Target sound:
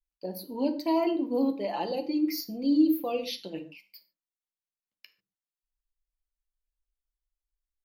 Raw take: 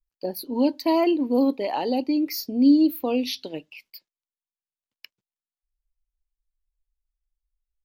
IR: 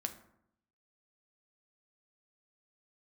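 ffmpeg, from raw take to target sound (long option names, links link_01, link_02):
-filter_complex "[0:a]asettb=1/sr,asplit=3[link_01][link_02][link_03];[link_01]atrim=end=1.674[link_04];[link_02]atrim=start=1.67:end=3.71,asetpts=PTS-STARTPTS,afade=type=in:duration=0.004:curve=qsin,afade=type=out:start_time=2.036:duration=0.004:curve=qsin,aecho=1:1:5.8:0.77,atrim=end_sample=89964[link_05];[link_03]atrim=start=3.706[link_06];[link_04][link_05]acrossfade=duration=0.004:curve1=hsin:curve2=qsin[link_07];[link_07][link_06]acrossfade=duration=0.004:curve1=qsin:curve2=hsin[link_08];[1:a]atrim=start_sample=2205,atrim=end_sample=6174,asetrate=39249,aresample=44100[link_09];[link_08][link_09]afir=irnorm=-1:irlink=0,volume=-7dB"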